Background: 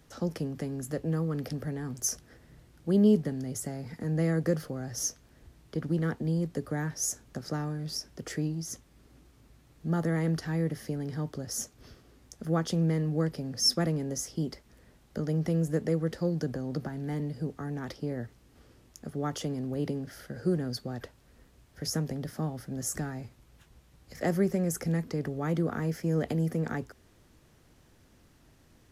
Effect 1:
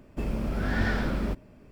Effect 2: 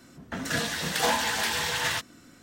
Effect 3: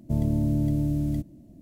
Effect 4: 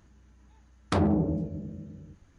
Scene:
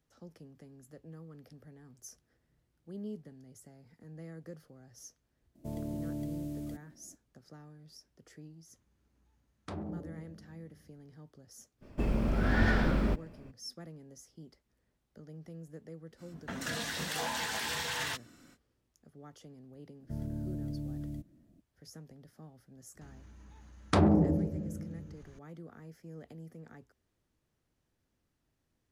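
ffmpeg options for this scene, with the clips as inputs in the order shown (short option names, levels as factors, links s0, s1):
-filter_complex "[3:a]asplit=2[s0][s1];[4:a]asplit=2[s2][s3];[0:a]volume=0.106[s4];[s0]bass=f=250:g=-12,treble=f=4000:g=1[s5];[1:a]highshelf=f=5800:g=-5.5[s6];[2:a]alimiter=limit=0.106:level=0:latency=1:release=67[s7];[s3]acompressor=mode=upward:threshold=0.00447:ratio=2.5:attack=3.2:release=140:knee=2.83:detection=peak[s8];[s5]atrim=end=1.61,asetpts=PTS-STARTPTS,volume=0.501,afade=t=in:d=0.004:c=hsin,afade=t=out:st=1.606:d=0.004:c=hsin,adelay=5550[s9];[s2]atrim=end=2.38,asetpts=PTS-STARTPTS,volume=0.15,afade=t=in:d=0.004:c=hsin,afade=t=out:st=2.376:d=0.004:c=hsin,adelay=8760[s10];[s6]atrim=end=1.71,asetpts=PTS-STARTPTS,afade=t=in:d=0.02,afade=t=out:st=1.69:d=0.02,adelay=11810[s11];[s7]atrim=end=2.42,asetpts=PTS-STARTPTS,volume=0.501,afade=t=in:d=0.05,afade=t=out:st=2.37:d=0.05,adelay=16160[s12];[s1]atrim=end=1.61,asetpts=PTS-STARTPTS,volume=0.211,afade=t=in:d=0.004:c=hsin,afade=t=out:st=1.606:d=0.004:c=hsin,adelay=20000[s13];[s8]atrim=end=2.38,asetpts=PTS-STARTPTS,afade=t=in:d=0.004:c=hsin,afade=t=out:st=2.376:d=0.004:c=hsin,adelay=23010[s14];[s4][s9][s10][s11][s12][s13][s14]amix=inputs=7:normalize=0"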